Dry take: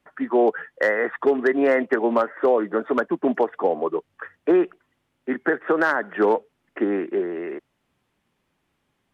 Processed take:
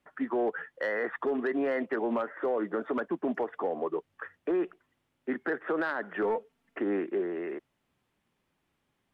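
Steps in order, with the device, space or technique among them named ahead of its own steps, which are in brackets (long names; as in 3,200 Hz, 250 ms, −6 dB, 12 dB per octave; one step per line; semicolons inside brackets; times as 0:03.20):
0:06.22–0:06.79: comb filter 4.4 ms, depth 59%
soft clipper into limiter (soft clipping −8.5 dBFS, distortion −24 dB; brickwall limiter −17.5 dBFS, peak gain reduction 7.5 dB)
level −5 dB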